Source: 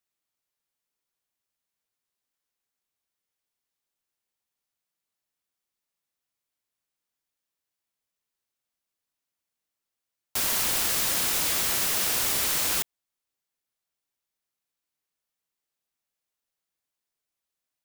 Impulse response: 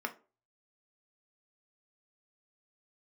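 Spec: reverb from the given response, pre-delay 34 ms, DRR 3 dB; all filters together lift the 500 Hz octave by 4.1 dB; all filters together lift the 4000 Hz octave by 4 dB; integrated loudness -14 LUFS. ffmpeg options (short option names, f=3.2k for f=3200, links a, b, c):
-filter_complex "[0:a]equalizer=f=500:t=o:g=5,equalizer=f=4k:t=o:g=5,asplit=2[a][b];[1:a]atrim=start_sample=2205,adelay=34[c];[b][c]afir=irnorm=-1:irlink=0,volume=-6.5dB[d];[a][d]amix=inputs=2:normalize=0,volume=7.5dB"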